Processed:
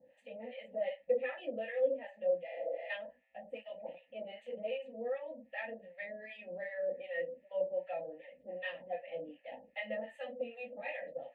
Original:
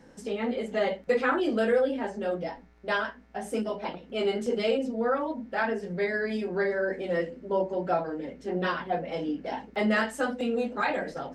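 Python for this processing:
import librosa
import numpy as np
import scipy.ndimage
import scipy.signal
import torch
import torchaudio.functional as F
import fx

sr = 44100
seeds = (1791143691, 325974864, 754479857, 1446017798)

y = fx.vowel_filter(x, sr, vowel='e')
y = fx.high_shelf(y, sr, hz=4700.0, db=-7.0)
y = fx.fixed_phaser(y, sr, hz=1500.0, stages=6)
y = fx.spec_repair(y, sr, seeds[0], start_s=2.5, length_s=0.37, low_hz=310.0, high_hz=8000.0, source='before')
y = fx.harmonic_tremolo(y, sr, hz=2.6, depth_pct=100, crossover_hz=770.0)
y = y * 10.0 ** (9.5 / 20.0)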